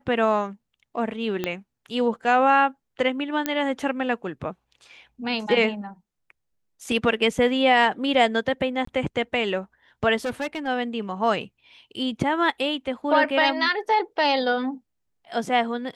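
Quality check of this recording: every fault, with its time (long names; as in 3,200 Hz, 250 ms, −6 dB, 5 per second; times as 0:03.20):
0:01.44: click −12 dBFS
0:03.46: click −8 dBFS
0:08.85–0:08.87: drop-out 24 ms
0:10.25–0:10.68: clipping −23.5 dBFS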